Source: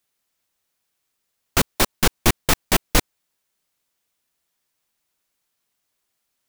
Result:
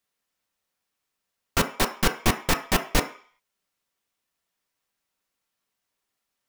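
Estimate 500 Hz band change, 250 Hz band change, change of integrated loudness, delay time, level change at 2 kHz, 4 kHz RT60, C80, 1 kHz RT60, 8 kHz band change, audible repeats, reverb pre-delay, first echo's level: -3.0 dB, -3.0 dB, -4.5 dB, none, -3.0 dB, 0.60 s, 16.5 dB, 0.50 s, -6.5 dB, none, 3 ms, none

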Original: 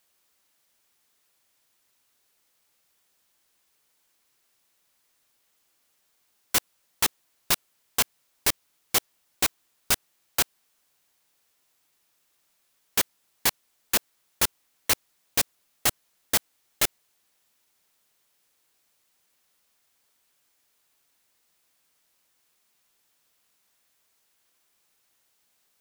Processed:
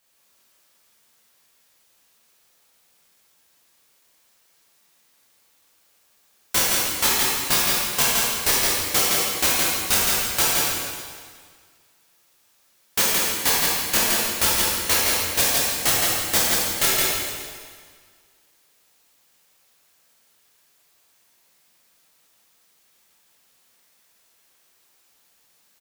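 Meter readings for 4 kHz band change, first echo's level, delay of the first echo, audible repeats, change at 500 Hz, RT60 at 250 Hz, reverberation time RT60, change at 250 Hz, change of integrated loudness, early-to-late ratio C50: +8.5 dB, -3.5 dB, 0.167 s, 1, +9.0 dB, 1.8 s, 1.8 s, +8.5 dB, +7.5 dB, -4.5 dB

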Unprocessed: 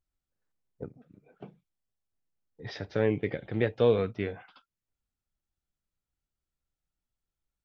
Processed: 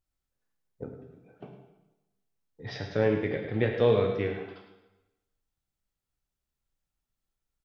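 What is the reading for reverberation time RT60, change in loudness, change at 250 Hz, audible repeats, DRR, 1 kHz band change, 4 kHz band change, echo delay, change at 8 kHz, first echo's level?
1.0 s, +1.5 dB, +1.0 dB, 1, 1.5 dB, +3.0 dB, +2.0 dB, 0.106 s, n/a, -9.5 dB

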